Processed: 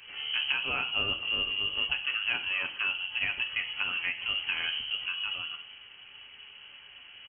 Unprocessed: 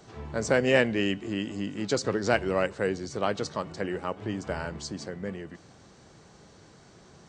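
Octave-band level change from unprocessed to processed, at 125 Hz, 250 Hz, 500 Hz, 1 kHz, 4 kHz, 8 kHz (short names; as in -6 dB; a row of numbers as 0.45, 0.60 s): -17.0 dB, -21.5 dB, -21.5 dB, -7.5 dB, +10.5 dB, under -40 dB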